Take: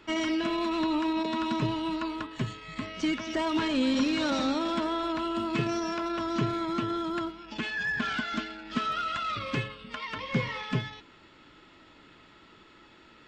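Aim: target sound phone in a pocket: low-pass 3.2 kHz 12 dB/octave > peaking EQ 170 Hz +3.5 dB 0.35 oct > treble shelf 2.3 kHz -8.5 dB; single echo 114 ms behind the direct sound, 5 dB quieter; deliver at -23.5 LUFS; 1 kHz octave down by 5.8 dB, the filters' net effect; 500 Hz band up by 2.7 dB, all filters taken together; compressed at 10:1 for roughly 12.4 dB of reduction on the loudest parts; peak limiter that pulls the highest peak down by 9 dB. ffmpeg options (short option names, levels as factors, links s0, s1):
-af "equalizer=f=500:t=o:g=7,equalizer=f=1000:t=o:g=-7,acompressor=threshold=0.02:ratio=10,alimiter=level_in=2.66:limit=0.0631:level=0:latency=1,volume=0.376,lowpass=3200,equalizer=f=170:t=o:w=0.35:g=3.5,highshelf=f=2300:g=-8.5,aecho=1:1:114:0.562,volume=7.08"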